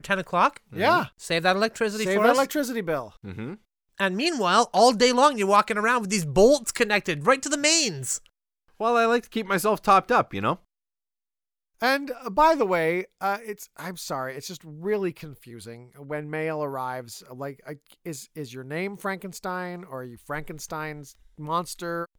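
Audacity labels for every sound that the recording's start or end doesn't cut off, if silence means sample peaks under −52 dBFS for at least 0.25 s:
3.980000	8.270000	sound
8.680000	10.610000	sound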